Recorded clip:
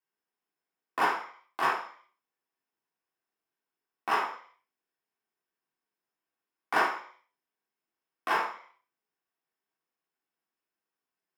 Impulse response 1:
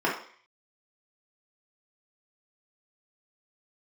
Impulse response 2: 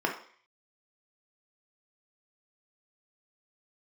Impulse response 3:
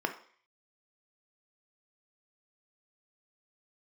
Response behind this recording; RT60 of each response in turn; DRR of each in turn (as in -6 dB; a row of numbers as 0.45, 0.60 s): 1; 0.50, 0.50, 0.50 s; -6.0, 0.0, 5.0 dB